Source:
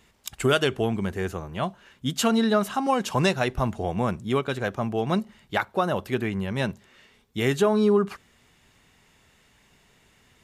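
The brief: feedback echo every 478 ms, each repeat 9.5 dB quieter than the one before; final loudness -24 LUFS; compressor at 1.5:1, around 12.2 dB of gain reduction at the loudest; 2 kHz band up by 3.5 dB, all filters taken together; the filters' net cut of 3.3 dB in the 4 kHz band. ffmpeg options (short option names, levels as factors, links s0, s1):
-af "equalizer=f=2000:t=o:g=6.5,equalizer=f=4000:t=o:g=-7.5,acompressor=threshold=0.00282:ratio=1.5,aecho=1:1:478|956|1434|1912:0.335|0.111|0.0365|0.012,volume=3.98"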